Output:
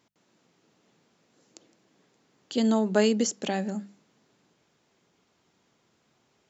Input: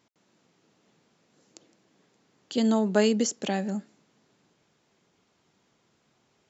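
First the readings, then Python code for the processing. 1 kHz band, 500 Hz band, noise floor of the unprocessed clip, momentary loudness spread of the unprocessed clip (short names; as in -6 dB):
0.0 dB, 0.0 dB, -70 dBFS, 11 LU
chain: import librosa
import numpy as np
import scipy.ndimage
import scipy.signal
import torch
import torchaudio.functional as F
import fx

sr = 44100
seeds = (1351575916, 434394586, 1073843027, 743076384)

y = fx.hum_notches(x, sr, base_hz=50, count=4)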